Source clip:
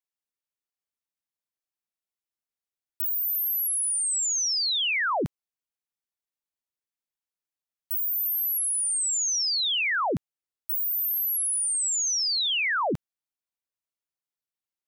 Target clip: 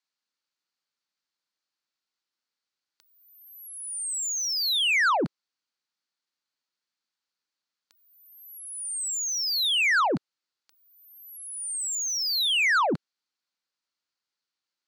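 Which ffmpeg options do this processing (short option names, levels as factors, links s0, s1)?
-filter_complex "[0:a]highpass=220,equalizer=f=420:t=q:w=4:g=-5,equalizer=f=670:t=q:w=4:g=-6,equalizer=f=1400:t=q:w=4:g=4,equalizer=f=4400:t=q:w=4:g=8,lowpass=f=6900:w=0.5412,lowpass=f=6900:w=1.3066,asoftclip=type=tanh:threshold=0.0531,acrossover=split=2900[s0][s1];[s1]acompressor=threshold=0.0178:ratio=4:attack=1:release=60[s2];[s0][s2]amix=inputs=2:normalize=0,volume=2.11"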